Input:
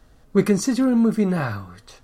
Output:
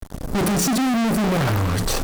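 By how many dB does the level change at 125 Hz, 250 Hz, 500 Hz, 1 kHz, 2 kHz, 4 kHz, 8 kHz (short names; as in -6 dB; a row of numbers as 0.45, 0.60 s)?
+4.5, -1.5, -2.0, +8.0, +5.0, +10.0, +8.0 dB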